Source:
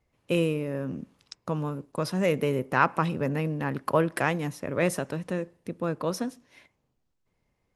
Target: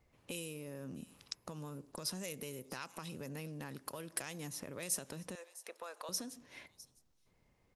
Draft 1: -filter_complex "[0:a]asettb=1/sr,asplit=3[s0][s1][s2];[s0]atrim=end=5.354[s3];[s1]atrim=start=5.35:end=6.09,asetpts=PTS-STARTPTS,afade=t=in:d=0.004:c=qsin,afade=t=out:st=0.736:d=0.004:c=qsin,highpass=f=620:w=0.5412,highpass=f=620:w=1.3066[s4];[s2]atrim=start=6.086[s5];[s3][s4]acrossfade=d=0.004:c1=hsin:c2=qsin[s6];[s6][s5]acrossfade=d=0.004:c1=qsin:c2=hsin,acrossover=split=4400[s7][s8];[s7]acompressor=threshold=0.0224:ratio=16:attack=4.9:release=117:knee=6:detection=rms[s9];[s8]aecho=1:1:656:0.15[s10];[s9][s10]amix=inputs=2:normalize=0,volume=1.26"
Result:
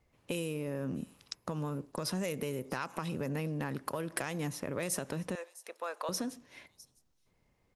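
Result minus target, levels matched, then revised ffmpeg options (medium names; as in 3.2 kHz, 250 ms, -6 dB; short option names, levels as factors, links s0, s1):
compression: peak gain reduction -10 dB
-filter_complex "[0:a]asettb=1/sr,asplit=3[s0][s1][s2];[s0]atrim=end=5.354[s3];[s1]atrim=start=5.35:end=6.09,asetpts=PTS-STARTPTS,afade=t=in:d=0.004:c=qsin,afade=t=out:st=0.736:d=0.004:c=qsin,highpass=f=620:w=0.5412,highpass=f=620:w=1.3066[s4];[s2]atrim=start=6.086[s5];[s3][s4]acrossfade=d=0.004:c1=hsin:c2=qsin[s6];[s6][s5]acrossfade=d=0.004:c1=qsin:c2=hsin,acrossover=split=4400[s7][s8];[s7]acompressor=threshold=0.00668:ratio=16:attack=4.9:release=117:knee=6:detection=rms[s9];[s8]aecho=1:1:656:0.15[s10];[s9][s10]amix=inputs=2:normalize=0,volume=1.26"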